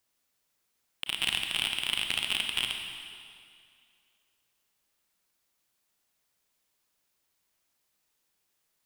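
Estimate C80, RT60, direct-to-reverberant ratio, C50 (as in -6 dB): 5.5 dB, 2.3 s, 3.5 dB, 4.0 dB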